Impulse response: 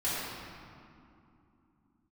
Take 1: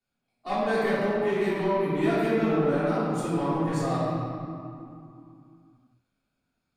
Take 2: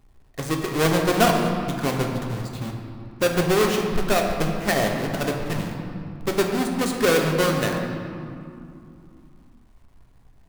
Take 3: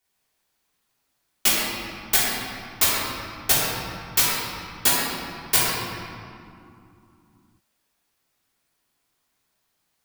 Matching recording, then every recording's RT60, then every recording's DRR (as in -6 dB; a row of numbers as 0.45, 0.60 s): 1; 2.7, 2.7, 2.7 s; -13.0, 1.0, -8.5 dB